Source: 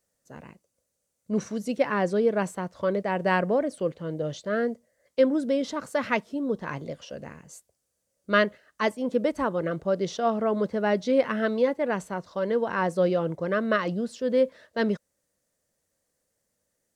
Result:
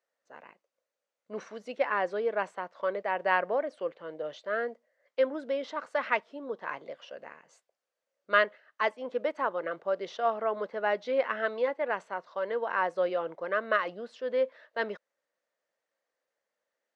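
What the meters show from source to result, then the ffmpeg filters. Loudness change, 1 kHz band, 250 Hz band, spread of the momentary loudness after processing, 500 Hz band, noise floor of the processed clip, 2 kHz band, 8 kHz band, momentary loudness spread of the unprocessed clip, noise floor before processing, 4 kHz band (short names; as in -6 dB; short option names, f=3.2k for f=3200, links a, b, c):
-4.5 dB, -1.0 dB, -16.0 dB, 12 LU, -5.0 dB, under -85 dBFS, -0.5 dB, under -15 dB, 9 LU, -79 dBFS, -4.5 dB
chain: -af "highpass=630,lowpass=2.8k"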